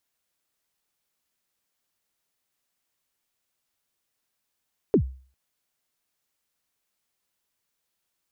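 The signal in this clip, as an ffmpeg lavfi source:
-f lavfi -i "aevalsrc='0.251*pow(10,-3*t/0.42)*sin(2*PI*(480*0.086/log(65/480)*(exp(log(65/480)*min(t,0.086)/0.086)-1)+65*max(t-0.086,0)))':d=0.4:s=44100"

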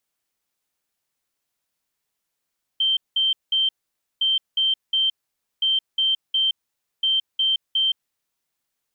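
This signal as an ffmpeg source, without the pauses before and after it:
-f lavfi -i "aevalsrc='0.141*sin(2*PI*3130*t)*clip(min(mod(mod(t,1.41),0.36),0.17-mod(mod(t,1.41),0.36))/0.005,0,1)*lt(mod(t,1.41),1.08)':d=5.64:s=44100"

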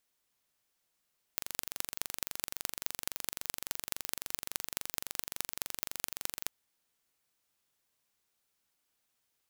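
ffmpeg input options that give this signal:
-f lavfi -i "aevalsrc='0.631*eq(mod(n,1869),0)*(0.5+0.5*eq(mod(n,9345),0))':d=5.09:s=44100"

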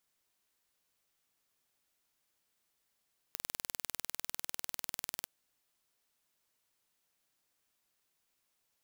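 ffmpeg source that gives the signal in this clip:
-f lavfi -i "aevalsrc='0.335*eq(mod(n,2194),0)':d=1.93:s=44100"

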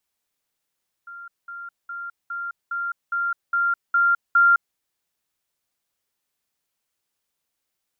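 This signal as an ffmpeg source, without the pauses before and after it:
-f lavfi -i "aevalsrc='pow(10,(-36+3*floor(t/0.41))/20)*sin(2*PI*1390*t)*clip(min(mod(t,0.41),0.21-mod(t,0.41))/0.005,0,1)':d=3.69:s=44100"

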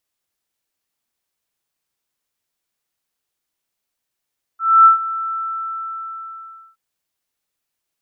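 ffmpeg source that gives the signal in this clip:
-f lavfi -i "aevalsrc='0.631*sin(2*PI*1330*t)':d=2.17:s=44100,afade=t=in:d=0.263,afade=t=out:st=0.263:d=0.123:silence=0.15,afade=t=out:st=0.74:d=1.43"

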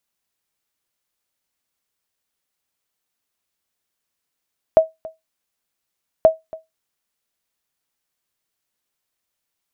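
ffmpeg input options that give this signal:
-f lavfi -i "aevalsrc='0.75*(sin(2*PI*642*mod(t,1.48))*exp(-6.91*mod(t,1.48)/0.18)+0.0841*sin(2*PI*642*max(mod(t,1.48)-0.28,0))*exp(-6.91*max(mod(t,1.48)-0.28,0)/0.18))':d=2.96:s=44100"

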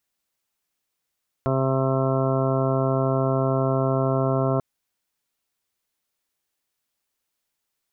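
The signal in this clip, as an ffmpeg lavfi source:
-f lavfi -i "aevalsrc='0.0708*sin(2*PI*133*t)+0.0422*sin(2*PI*266*t)+0.0447*sin(2*PI*399*t)+0.0355*sin(2*PI*532*t)+0.0501*sin(2*PI*665*t)+0.00841*sin(2*PI*798*t)+0.0133*sin(2*PI*931*t)+0.0237*sin(2*PI*1064*t)+0.00944*sin(2*PI*1197*t)+0.02*sin(2*PI*1330*t)':d=3.14:s=44100"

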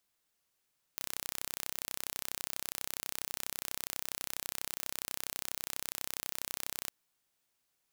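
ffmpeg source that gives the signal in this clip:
-f lavfi -i "aevalsrc='0.335*eq(mod(n,1370),0)':d=5.93:s=44100"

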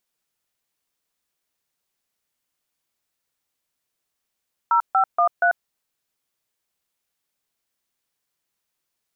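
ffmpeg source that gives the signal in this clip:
-f lavfi -i "aevalsrc='0.141*clip(min(mod(t,0.237),0.092-mod(t,0.237))/0.002,0,1)*(eq(floor(t/0.237),0)*(sin(2*PI*941*mod(t,0.237))+sin(2*PI*1336*mod(t,0.237)))+eq(floor(t/0.237),1)*(sin(2*PI*770*mod(t,0.237))+sin(2*PI*1336*mod(t,0.237)))+eq(floor(t/0.237),2)*(sin(2*PI*697*mod(t,0.237))+sin(2*PI*1209*mod(t,0.237)))+eq(floor(t/0.237),3)*(sin(2*PI*697*mod(t,0.237))+sin(2*PI*1477*mod(t,0.237))))':d=0.948:s=44100"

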